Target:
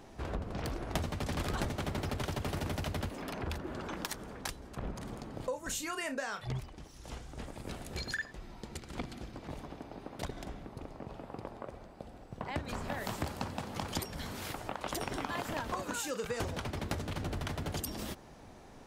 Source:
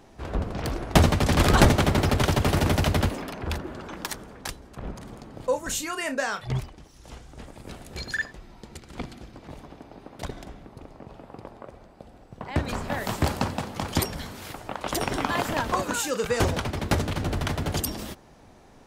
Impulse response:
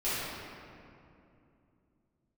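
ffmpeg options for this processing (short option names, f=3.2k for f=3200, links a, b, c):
-af "acompressor=threshold=-34dB:ratio=4,volume=-1dB"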